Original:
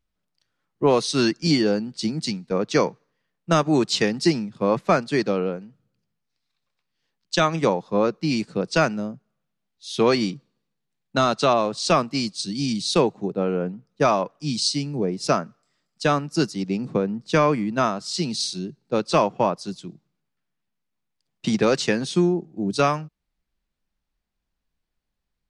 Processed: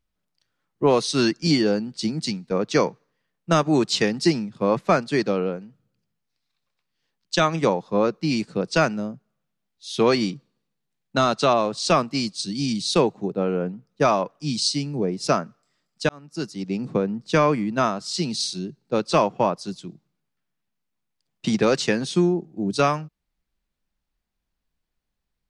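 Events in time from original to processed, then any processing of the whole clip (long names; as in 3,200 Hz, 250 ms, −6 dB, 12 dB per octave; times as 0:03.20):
0:16.09–0:16.85: fade in linear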